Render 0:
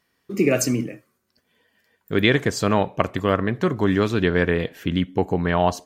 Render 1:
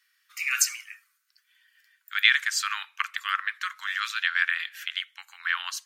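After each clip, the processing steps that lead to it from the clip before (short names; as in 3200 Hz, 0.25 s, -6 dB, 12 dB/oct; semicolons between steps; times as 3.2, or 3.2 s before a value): steep high-pass 1300 Hz 48 dB/oct; gain +2.5 dB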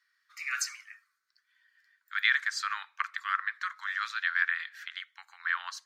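EQ curve 680 Hz 0 dB, 1900 Hz -3 dB, 2800 Hz -14 dB, 4200 Hz -5 dB, 12000 Hz -18 dB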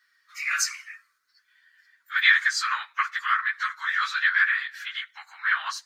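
phase scrambler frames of 50 ms; gain +7.5 dB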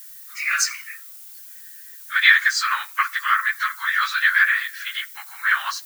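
added noise violet -46 dBFS; gain +4.5 dB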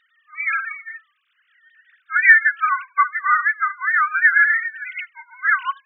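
sine-wave speech; gain +2.5 dB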